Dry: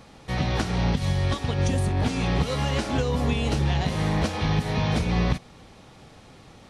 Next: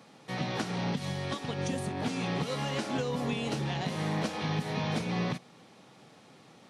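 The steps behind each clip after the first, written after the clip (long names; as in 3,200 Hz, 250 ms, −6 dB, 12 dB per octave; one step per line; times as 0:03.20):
high-pass filter 140 Hz 24 dB per octave
level −5.5 dB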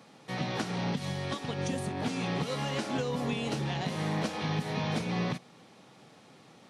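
no processing that can be heard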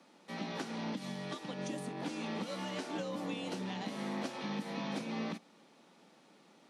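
frequency shifter +47 Hz
level −7 dB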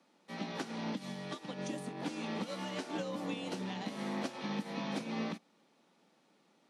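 expander for the loud parts 1.5 to 1, over −53 dBFS
level +2 dB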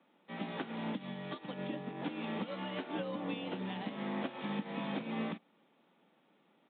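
downsampling to 8,000 Hz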